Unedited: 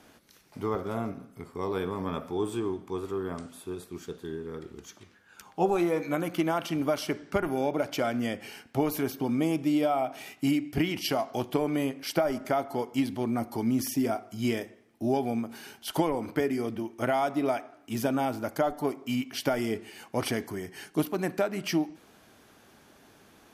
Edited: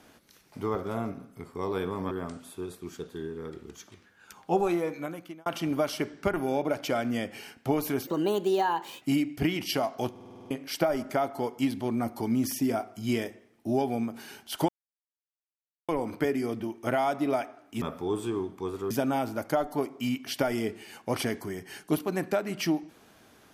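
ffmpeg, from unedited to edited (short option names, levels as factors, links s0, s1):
-filter_complex "[0:a]asplit=16[s0][s1][s2][s3][s4][s5][s6][s7][s8][s9][s10][s11][s12][s13][s14][s15];[s0]atrim=end=2.112[s16];[s1]atrim=start=3.198:end=6.55,asetpts=PTS-STARTPTS,afade=t=out:st=2.512:d=0.84[s17];[s2]atrim=start=6.55:end=9.164,asetpts=PTS-STARTPTS,afade=t=in:d=0.004:c=hsin[s18];[s3]atrim=start=9.16:end=10.37,asetpts=PTS-STARTPTS,asetrate=56448,aresample=44100,atrim=end_sample=41688,asetpts=PTS-STARTPTS[s19];[s4]atrim=start=10.366:end=11.512[s20];[s5]atrim=start=11.458:end=11.512[s21];[s6]atrim=start=11.458:end=11.512[s22];[s7]atrim=start=11.458:end=11.512[s23];[s8]atrim=start=11.458:end=11.512[s24];[s9]atrim=start=11.458:end=11.512[s25];[s10]atrim=start=11.458:end=11.512[s26];[s11]atrim=start=11.458:end=11.512[s27];[s12]atrim=start=11.858:end=16.04,asetpts=PTS-STARTPTS,afade=t=out:st=4.178:d=0.004:c=hsin,apad=pad_dur=1.2[s28];[s13]atrim=start=16.04:end=17.972,asetpts=PTS-STARTPTS,afade=t=in:d=0.004:c=hsin[s29];[s14]atrim=start=2.108:end=3.202[s30];[s15]atrim=start=17.968[s31];[s17][s18]concat=n=2:v=0:a=1[s32];[s16][s32]acrossfade=d=0.004:c1=hsin:c2=hsin[s33];[s33][s19]acrossfade=d=0.004:c1=hsin:c2=hsin[s34];[s34][s20]acrossfade=d=0.004:c1=hsin:c2=hsin[s35];[s35][s21]acrossfade=d=0.004:c1=hsin:c2=hsin[s36];[s36][s22]acrossfade=d=0.004:c1=hsin:c2=hsin[s37];[s37][s23]acrossfade=d=0.004:c1=hsin:c2=hsin[s38];[s38][s24]acrossfade=d=0.004:c1=hsin:c2=hsin[s39];[s39][s25]acrossfade=d=0.004:c1=hsin:c2=hsin[s40];[s40][s26]acrossfade=d=0.004:c1=hsin:c2=hsin[s41];[s41][s27]acrossfade=d=0.004:c1=hsin:c2=hsin[s42];[s28][s29]concat=n=2:v=0:a=1[s43];[s42][s43]acrossfade=d=0.004:c1=hsin:c2=hsin[s44];[s44][s30]acrossfade=d=0.004:c1=hsin:c2=hsin[s45];[s45][s31]acrossfade=d=0.004:c1=hsin:c2=hsin"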